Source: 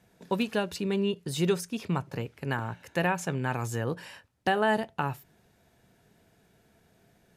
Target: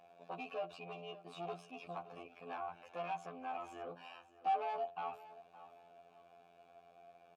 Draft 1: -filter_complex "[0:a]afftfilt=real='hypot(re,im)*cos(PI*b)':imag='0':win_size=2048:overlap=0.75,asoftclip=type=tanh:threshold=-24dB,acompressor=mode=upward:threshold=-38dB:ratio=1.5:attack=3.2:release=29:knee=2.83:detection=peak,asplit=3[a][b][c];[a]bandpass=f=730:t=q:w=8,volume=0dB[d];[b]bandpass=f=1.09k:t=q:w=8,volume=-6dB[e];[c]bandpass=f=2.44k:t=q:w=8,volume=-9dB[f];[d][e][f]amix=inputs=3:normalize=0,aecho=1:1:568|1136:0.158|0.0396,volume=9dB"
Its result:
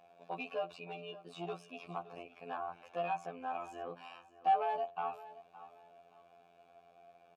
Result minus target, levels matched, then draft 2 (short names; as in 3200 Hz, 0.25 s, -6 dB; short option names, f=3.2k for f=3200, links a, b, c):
soft clip: distortion -6 dB
-filter_complex "[0:a]afftfilt=real='hypot(re,im)*cos(PI*b)':imag='0':win_size=2048:overlap=0.75,asoftclip=type=tanh:threshold=-33dB,acompressor=mode=upward:threshold=-38dB:ratio=1.5:attack=3.2:release=29:knee=2.83:detection=peak,asplit=3[a][b][c];[a]bandpass=f=730:t=q:w=8,volume=0dB[d];[b]bandpass=f=1.09k:t=q:w=8,volume=-6dB[e];[c]bandpass=f=2.44k:t=q:w=8,volume=-9dB[f];[d][e][f]amix=inputs=3:normalize=0,aecho=1:1:568|1136:0.158|0.0396,volume=9dB"